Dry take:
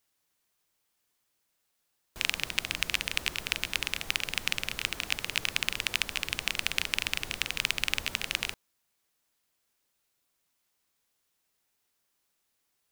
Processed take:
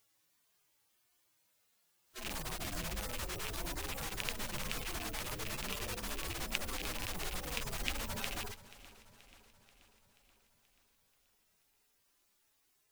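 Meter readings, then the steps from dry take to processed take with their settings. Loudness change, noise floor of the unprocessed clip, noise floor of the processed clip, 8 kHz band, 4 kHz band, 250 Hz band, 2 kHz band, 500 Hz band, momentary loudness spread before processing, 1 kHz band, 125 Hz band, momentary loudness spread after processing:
−9.0 dB, −78 dBFS, −75 dBFS, −5.5 dB, −12.0 dB, +1.5 dB, −12.0 dB, +1.5 dB, 3 LU, −1.5 dB, +2.0 dB, 5 LU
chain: harmonic-percussive split with one part muted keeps harmonic
feedback echo with a swinging delay time 482 ms, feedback 58%, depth 64 cents, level −18 dB
level +6.5 dB

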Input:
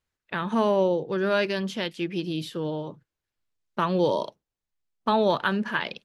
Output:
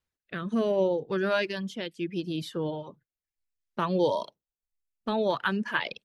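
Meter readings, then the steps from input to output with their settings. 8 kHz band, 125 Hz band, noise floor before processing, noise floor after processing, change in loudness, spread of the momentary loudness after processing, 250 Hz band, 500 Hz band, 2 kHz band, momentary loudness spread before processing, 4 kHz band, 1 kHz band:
−3.5 dB, −3.5 dB, below −85 dBFS, below −85 dBFS, −3.0 dB, 13 LU, −3.0 dB, −3.0 dB, −2.0 dB, 11 LU, −3.5 dB, −5.0 dB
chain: rotating-speaker cabinet horn 0.65 Hz
reverb reduction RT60 0.74 s

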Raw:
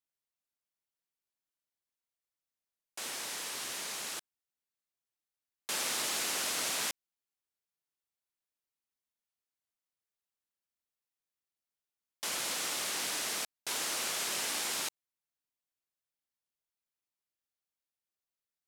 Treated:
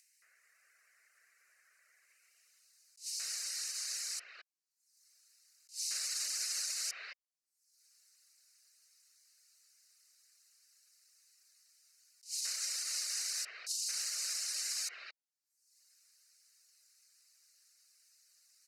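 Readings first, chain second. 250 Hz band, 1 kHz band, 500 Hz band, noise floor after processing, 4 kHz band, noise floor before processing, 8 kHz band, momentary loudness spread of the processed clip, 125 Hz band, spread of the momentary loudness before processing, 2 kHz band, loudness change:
below −30 dB, −17.5 dB, below −20 dB, below −85 dBFS, −2.5 dB, below −85 dBFS, −1.0 dB, 11 LU, below −35 dB, 9 LU, −9.0 dB, −2.5 dB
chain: parametric band 8,000 Hz +9 dB 2.5 octaves
phaser with its sweep stopped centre 920 Hz, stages 6
multiband delay without the direct sound highs, lows 220 ms, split 3,100 Hz
brickwall limiter −24 dBFS, peak gain reduction 5.5 dB
band-pass filter sweep 1,900 Hz → 4,200 Hz, 0:01.95–0:02.82
reverb reduction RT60 0.65 s
upward compression, threshold −54 dBFS
level that may rise only so fast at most 240 dB per second
level +8 dB

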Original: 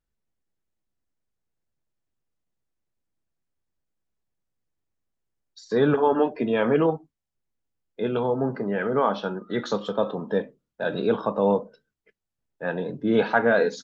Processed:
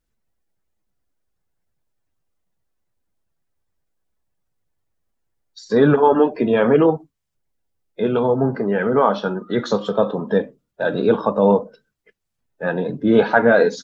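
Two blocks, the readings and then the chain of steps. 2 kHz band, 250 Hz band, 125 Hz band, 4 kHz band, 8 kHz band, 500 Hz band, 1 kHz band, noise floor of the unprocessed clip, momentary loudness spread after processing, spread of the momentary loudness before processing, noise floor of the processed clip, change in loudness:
+5.5 dB, +7.0 dB, +7.0 dB, +4.0 dB, can't be measured, +6.5 dB, +6.0 dB, −84 dBFS, 10 LU, 10 LU, −77 dBFS, +6.5 dB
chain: spectral magnitudes quantised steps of 15 dB
dynamic equaliser 2,700 Hz, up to −4 dB, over −42 dBFS, Q 1.2
level +7 dB

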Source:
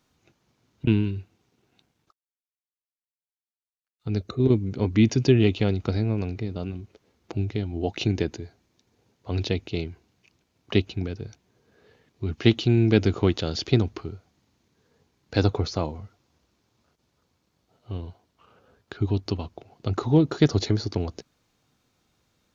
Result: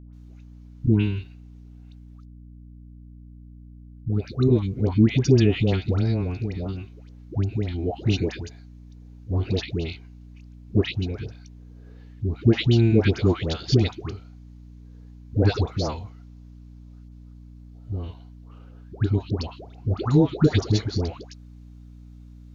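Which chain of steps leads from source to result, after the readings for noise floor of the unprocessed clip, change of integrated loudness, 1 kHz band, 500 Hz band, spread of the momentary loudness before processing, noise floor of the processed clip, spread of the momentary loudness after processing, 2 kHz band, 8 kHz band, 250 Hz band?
below −85 dBFS, +1.5 dB, 0.0 dB, +0.5 dB, 17 LU, −45 dBFS, 17 LU, 0.0 dB, can't be measured, +1.0 dB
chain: low-shelf EQ 93 Hz +7 dB
all-pass dispersion highs, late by 133 ms, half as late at 840 Hz
mains hum 60 Hz, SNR 19 dB

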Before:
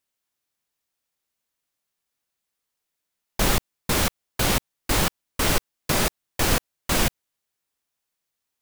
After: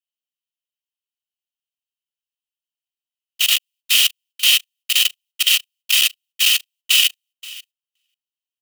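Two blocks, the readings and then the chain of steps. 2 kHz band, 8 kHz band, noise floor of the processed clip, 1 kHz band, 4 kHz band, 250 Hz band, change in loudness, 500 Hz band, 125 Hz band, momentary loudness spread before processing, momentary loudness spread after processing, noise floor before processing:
+7.0 dB, +7.0 dB, below −85 dBFS, −15.0 dB, +14.5 dB, below −40 dB, +8.5 dB, below −25 dB, below −40 dB, 3 LU, 5 LU, −82 dBFS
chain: in parallel at −8.5 dB: centre clipping without the shift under −31 dBFS
on the sum: brickwall limiter −15 dBFS, peak gain reduction 9 dB
high-shelf EQ 5,400 Hz +8 dB
comb filter 1.6 ms, depth 44%
repeating echo 530 ms, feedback 28%, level −20 dB
output level in coarse steps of 21 dB
leveller curve on the samples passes 1
high-pass with resonance 2,900 Hz, resonance Q 11
noise gate −49 dBFS, range −13 dB
level +2 dB

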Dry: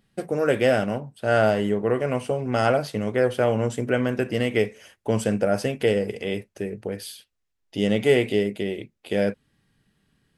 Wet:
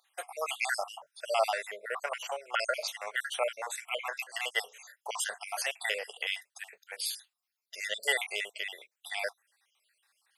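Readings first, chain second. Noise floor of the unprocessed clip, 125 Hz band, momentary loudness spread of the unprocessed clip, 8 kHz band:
−76 dBFS, below −40 dB, 11 LU, +3.0 dB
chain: time-frequency cells dropped at random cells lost 55%
inverse Chebyshev high-pass filter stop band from 290 Hz, stop band 50 dB
high-shelf EQ 4,900 Hz +6 dB
level +2 dB

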